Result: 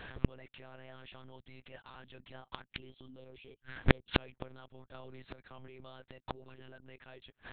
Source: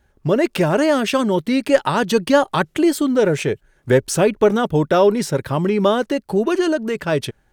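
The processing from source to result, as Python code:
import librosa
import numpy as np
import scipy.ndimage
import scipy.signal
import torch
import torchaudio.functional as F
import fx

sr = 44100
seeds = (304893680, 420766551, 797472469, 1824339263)

p1 = fx.tilt_shelf(x, sr, db=-6.5, hz=1200.0)
p2 = fx.over_compress(p1, sr, threshold_db=-26.0, ratio=-1.0)
p3 = p1 + (p2 * librosa.db_to_amplitude(2.0))
p4 = fx.env_flanger(p3, sr, rest_ms=9.1, full_db=-16.5, at=(2.68, 4.09))
p5 = fx.lpc_monotone(p4, sr, seeds[0], pitch_hz=130.0, order=8)
p6 = fx.gate_flip(p5, sr, shuts_db=-16.0, range_db=-41)
p7 = fx.band_squash(p6, sr, depth_pct=100, at=(4.94, 5.68))
y = p7 * librosa.db_to_amplitude(5.5)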